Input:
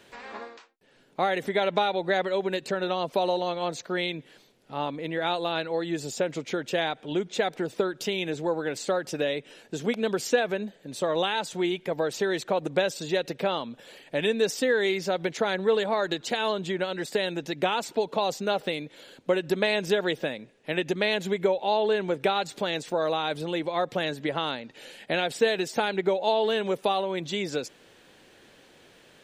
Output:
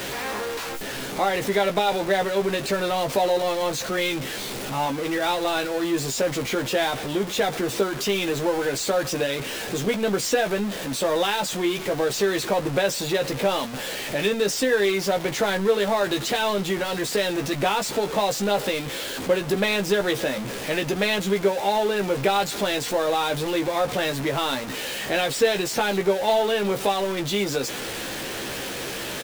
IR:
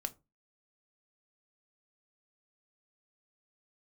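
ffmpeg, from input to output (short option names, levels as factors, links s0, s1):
-filter_complex "[0:a]aeval=exprs='val(0)+0.5*0.0447*sgn(val(0))':c=same,asplit=2[s0][s1];[s1]adelay=15,volume=0.531[s2];[s0][s2]amix=inputs=2:normalize=0"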